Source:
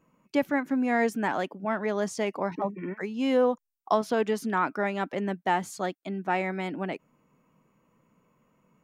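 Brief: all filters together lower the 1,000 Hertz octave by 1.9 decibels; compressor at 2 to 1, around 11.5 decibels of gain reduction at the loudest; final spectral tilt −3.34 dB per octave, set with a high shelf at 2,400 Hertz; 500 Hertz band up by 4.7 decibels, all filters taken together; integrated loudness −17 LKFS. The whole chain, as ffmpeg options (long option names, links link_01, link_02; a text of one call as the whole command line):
ffmpeg -i in.wav -af "equalizer=frequency=500:width_type=o:gain=7,equalizer=frequency=1000:width_type=o:gain=-4.5,highshelf=frequency=2400:gain=-8,acompressor=threshold=-36dB:ratio=2,volume=18dB" out.wav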